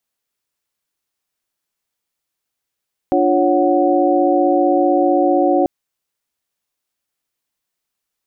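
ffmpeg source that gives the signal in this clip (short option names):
-f lavfi -i "aevalsrc='0.141*(sin(2*PI*293.66*t)+sin(2*PI*349.23*t)+sin(2*PI*554.37*t)+sin(2*PI*739.99*t))':d=2.54:s=44100"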